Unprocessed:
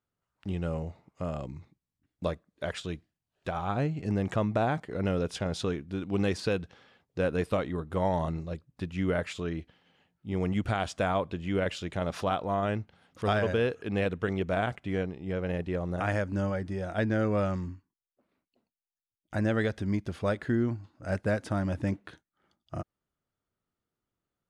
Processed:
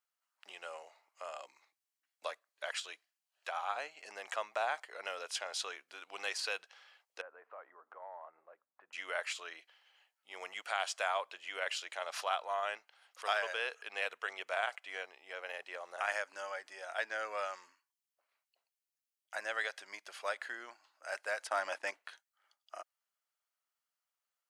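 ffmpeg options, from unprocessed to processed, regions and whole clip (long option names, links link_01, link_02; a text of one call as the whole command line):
ffmpeg -i in.wav -filter_complex "[0:a]asettb=1/sr,asplit=3[link_01][link_02][link_03];[link_01]atrim=end=7.214[link_04];[link_02]atrim=start=7.21:end=8.93,asetpts=PTS-STARTPTS,afade=type=in:duration=0.004:curve=qsin,afade=type=out:start_time=1.716:duration=0.004:curve=qsin,lowpass=frequency=1500:width=0.5412,lowpass=frequency=1500:width=1.3066,bandreject=frequency=50:width_type=h:width=6,bandreject=frequency=100:width_type=h:width=6,bandreject=frequency=150:width_type=h:width=6,bandreject=frequency=200:width_type=h:width=6,bandreject=frequency=250:width_type=h:width=6,acompressor=threshold=-40dB:ratio=3:attack=3.2:release=140:knee=1:detection=peak[link_05];[link_03]atrim=start=8.926[link_06];[link_04][link_05]acrossfade=duration=0.004:curve1=hsin:curve2=qsin[link_07];[link_07][link_06]acrossfade=duration=0.004:curve1=qsin:curve2=hsin,asettb=1/sr,asplit=3[link_08][link_09][link_10];[link_08]atrim=end=21.474[link_11];[link_09]atrim=start=21.47:end=21.91,asetpts=PTS-STARTPTS,afade=type=in:duration=0.004:curve=qsin,afade=type=out:start_time=0.436:duration=0.004:curve=qsin,agate=range=-13dB:threshold=-38dB:ratio=16:release=100:detection=peak,highshelf=frequency=5600:gain=-5.5,acontrast=83[link_12];[link_10]atrim=start=21.906[link_13];[link_11][link_12]acrossfade=duration=0.004:curve1=hsin:curve2=qsin[link_14];[link_14][link_13]acrossfade=duration=0.004:curve1=qsin:curve2=hsin,highpass=frequency=640:width=0.5412,highpass=frequency=640:width=1.3066,tiltshelf=frequency=1300:gain=-5,bandreject=frequency=3600:width=13,volume=-2dB" out.wav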